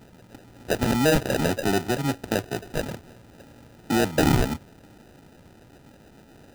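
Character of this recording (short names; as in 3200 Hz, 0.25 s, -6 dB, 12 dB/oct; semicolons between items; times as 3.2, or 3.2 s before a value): aliases and images of a low sample rate 1100 Hz, jitter 0%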